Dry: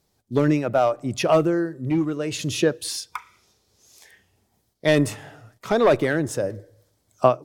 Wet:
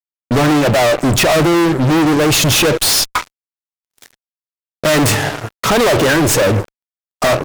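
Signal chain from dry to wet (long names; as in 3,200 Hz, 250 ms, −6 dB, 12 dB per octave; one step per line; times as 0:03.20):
stylus tracing distortion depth 0.079 ms
fuzz pedal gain 40 dB, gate −46 dBFS
downward expander −29 dBFS
level +2.5 dB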